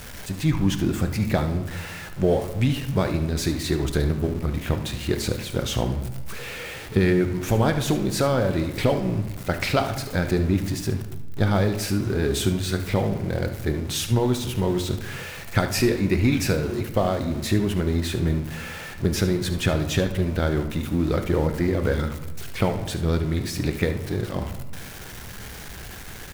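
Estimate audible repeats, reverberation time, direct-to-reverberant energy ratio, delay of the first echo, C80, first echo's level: 1, 1.1 s, 6.5 dB, 73 ms, 12.5 dB, -13.0 dB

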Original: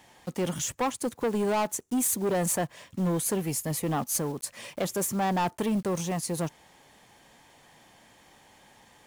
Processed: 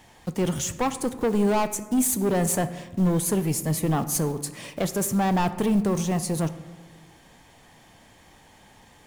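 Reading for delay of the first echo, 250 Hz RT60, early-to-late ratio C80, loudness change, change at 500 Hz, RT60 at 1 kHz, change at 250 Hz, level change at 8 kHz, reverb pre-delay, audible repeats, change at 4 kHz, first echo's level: no echo, 1.7 s, 15.0 dB, +4.0 dB, +3.0 dB, 1.3 s, +6.0 dB, +2.0 dB, 3 ms, no echo, +2.0 dB, no echo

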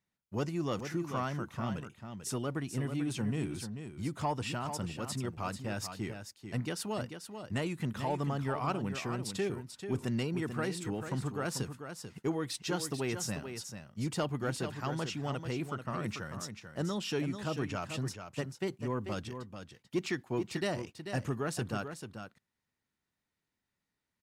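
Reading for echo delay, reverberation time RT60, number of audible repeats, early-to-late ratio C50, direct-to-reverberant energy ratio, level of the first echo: 440 ms, no reverb, 1, no reverb, no reverb, -8.5 dB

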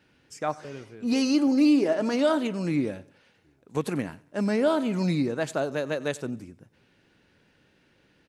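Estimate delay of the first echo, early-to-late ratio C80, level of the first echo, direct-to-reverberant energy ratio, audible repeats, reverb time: 93 ms, no reverb, -21.5 dB, no reverb, 2, no reverb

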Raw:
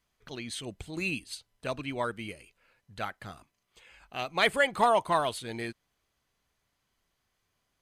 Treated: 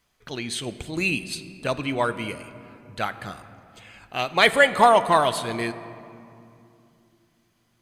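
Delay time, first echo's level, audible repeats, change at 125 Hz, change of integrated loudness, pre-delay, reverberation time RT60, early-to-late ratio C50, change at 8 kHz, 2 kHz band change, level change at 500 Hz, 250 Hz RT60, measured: no echo, no echo, no echo, +8.0 dB, +8.0 dB, 6 ms, 2.7 s, 13.0 dB, +8.0 dB, +8.5 dB, +8.0 dB, 3.9 s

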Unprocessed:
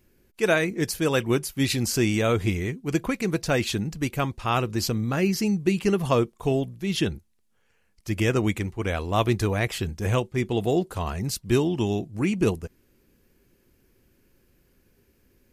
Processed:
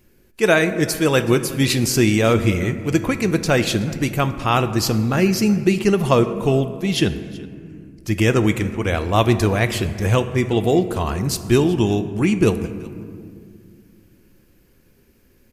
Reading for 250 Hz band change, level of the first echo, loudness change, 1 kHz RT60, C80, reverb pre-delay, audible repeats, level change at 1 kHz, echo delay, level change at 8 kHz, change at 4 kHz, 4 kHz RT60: +6.5 dB, -21.5 dB, +6.5 dB, 1.8 s, 12.5 dB, 5 ms, 1, +6.5 dB, 375 ms, +6.0 dB, +6.0 dB, 1.0 s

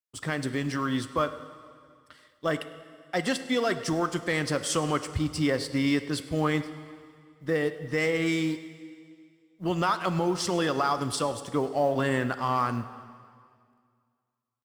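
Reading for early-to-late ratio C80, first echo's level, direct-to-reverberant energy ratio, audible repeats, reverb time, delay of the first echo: 13.0 dB, -20.5 dB, 11.0 dB, 1, 2.1 s, 103 ms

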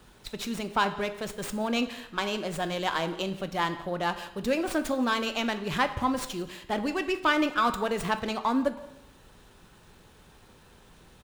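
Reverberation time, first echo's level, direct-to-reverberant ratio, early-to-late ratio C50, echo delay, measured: 0.80 s, -22.0 dB, 8.5 dB, 12.0 dB, 174 ms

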